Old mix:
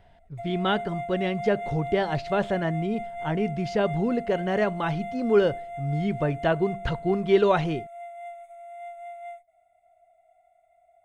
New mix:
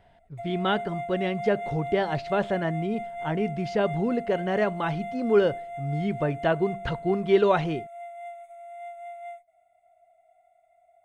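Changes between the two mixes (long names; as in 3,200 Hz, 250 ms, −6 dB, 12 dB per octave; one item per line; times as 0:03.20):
speech: add high-shelf EQ 5,800 Hz −5.5 dB
master: add low-shelf EQ 81 Hz −8 dB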